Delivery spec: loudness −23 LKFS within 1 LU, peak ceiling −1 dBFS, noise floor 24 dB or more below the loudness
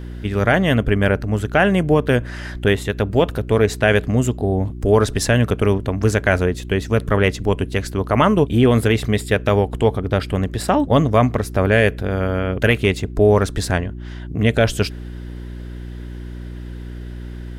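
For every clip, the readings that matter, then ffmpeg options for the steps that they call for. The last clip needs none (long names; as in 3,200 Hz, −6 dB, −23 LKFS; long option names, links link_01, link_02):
mains hum 60 Hz; hum harmonics up to 360 Hz; level of the hum −29 dBFS; integrated loudness −18.0 LKFS; sample peak −3.5 dBFS; target loudness −23.0 LKFS
→ -af "bandreject=frequency=60:width_type=h:width=4,bandreject=frequency=120:width_type=h:width=4,bandreject=frequency=180:width_type=h:width=4,bandreject=frequency=240:width_type=h:width=4,bandreject=frequency=300:width_type=h:width=4,bandreject=frequency=360:width_type=h:width=4"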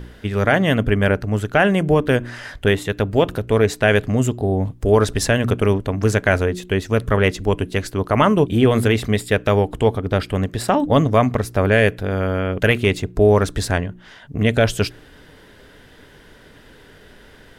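mains hum none found; integrated loudness −18.5 LKFS; sample peak −3.0 dBFS; target loudness −23.0 LKFS
→ -af "volume=-4.5dB"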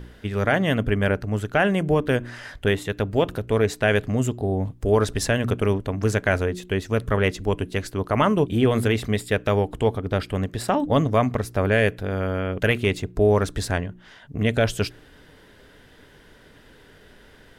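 integrated loudness −23.0 LKFS; sample peak −7.5 dBFS; background noise floor −51 dBFS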